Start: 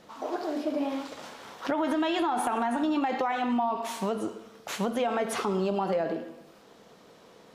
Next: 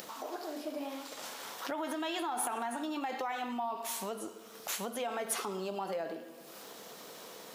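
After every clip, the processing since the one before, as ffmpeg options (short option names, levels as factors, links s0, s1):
-af "acompressor=mode=upward:threshold=0.0355:ratio=2.5,aemphasis=mode=production:type=bsi,volume=0.422"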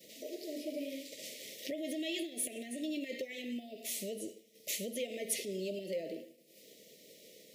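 -af "agate=range=0.0224:threshold=0.00794:ratio=3:detection=peak,asuperstop=centerf=1100:order=20:qfactor=0.87"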